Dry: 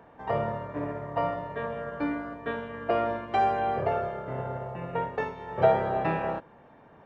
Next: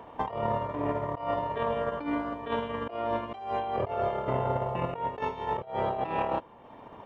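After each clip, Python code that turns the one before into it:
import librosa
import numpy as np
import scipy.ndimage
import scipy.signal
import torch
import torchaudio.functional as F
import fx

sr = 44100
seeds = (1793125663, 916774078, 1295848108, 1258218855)

y = fx.transient(x, sr, attack_db=9, sustain_db=-5)
y = fx.graphic_eq_31(y, sr, hz=(160, 1000, 1600, 3150), db=(-8, 6, -8, 7))
y = fx.over_compress(y, sr, threshold_db=-32.0, ratio=-1.0)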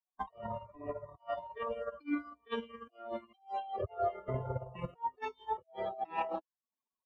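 y = fx.bin_expand(x, sr, power=3.0)
y = fx.band_widen(y, sr, depth_pct=40)
y = y * 10.0 ** (-1.0 / 20.0)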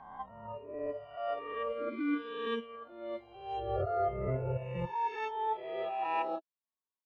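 y = fx.spec_swells(x, sr, rise_s=1.58)
y = fx.noise_reduce_blind(y, sr, reduce_db=11)
y = fx.env_lowpass(y, sr, base_hz=2300.0, full_db=-30.0)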